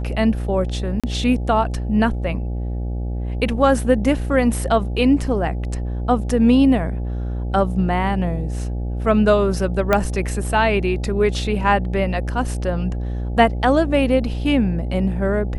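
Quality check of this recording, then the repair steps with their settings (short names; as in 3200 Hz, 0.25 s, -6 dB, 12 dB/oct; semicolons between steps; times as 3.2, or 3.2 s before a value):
buzz 60 Hz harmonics 14 -24 dBFS
1–1.04 gap 36 ms
9.93 pop -4 dBFS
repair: de-click; de-hum 60 Hz, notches 14; interpolate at 1, 36 ms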